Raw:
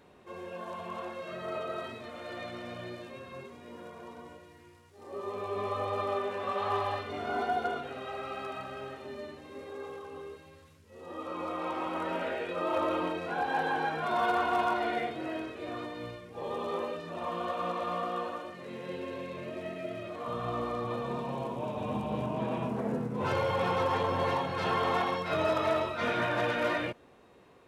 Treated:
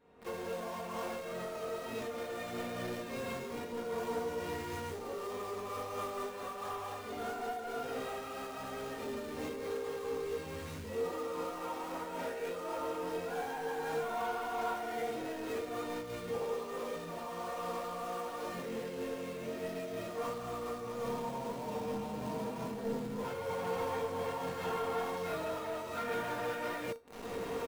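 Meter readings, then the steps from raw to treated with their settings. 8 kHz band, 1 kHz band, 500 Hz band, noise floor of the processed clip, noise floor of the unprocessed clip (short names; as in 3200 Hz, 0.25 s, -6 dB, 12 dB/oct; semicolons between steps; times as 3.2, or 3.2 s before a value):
n/a, -6.5 dB, -3.0 dB, -43 dBFS, -57 dBFS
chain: recorder AGC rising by 62 dB/s; high shelf 2600 Hz -8 dB; comb 4.2 ms, depth 34%; de-hum 48.31 Hz, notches 32; in parallel at -7 dB: companded quantiser 2-bit; on the sum: resonator 460 Hz, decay 0.4 s, mix 80%; noise-modulated level, depth 65%; gain +3.5 dB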